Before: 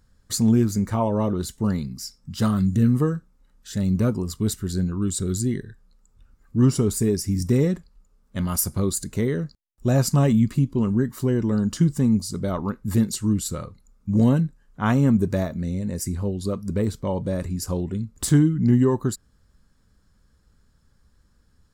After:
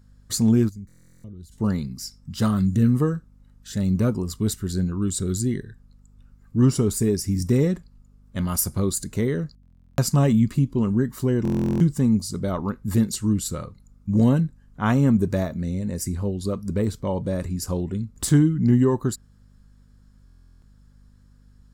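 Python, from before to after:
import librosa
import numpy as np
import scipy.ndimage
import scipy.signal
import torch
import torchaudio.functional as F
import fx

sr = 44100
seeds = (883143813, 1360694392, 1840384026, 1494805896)

y = fx.add_hum(x, sr, base_hz=50, snr_db=30)
y = fx.tone_stack(y, sr, knobs='10-0-1', at=(0.68, 1.51), fade=0.02)
y = fx.buffer_glitch(y, sr, at_s=(0.87, 9.61, 11.43, 20.25), block=1024, repeats=15)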